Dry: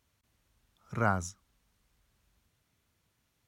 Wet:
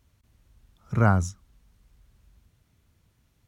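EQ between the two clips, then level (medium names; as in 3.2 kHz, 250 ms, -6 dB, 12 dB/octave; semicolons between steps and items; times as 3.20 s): bass shelf 93 Hz +8.5 dB; bass shelf 430 Hz +6.5 dB; +3.0 dB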